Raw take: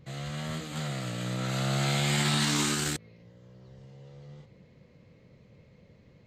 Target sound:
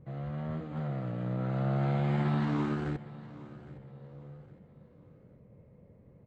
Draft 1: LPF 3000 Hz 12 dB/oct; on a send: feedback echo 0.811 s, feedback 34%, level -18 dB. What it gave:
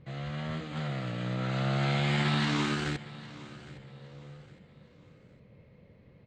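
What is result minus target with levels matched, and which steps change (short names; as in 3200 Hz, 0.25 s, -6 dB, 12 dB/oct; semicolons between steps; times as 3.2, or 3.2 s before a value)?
4000 Hz band +15.5 dB
change: LPF 1000 Hz 12 dB/oct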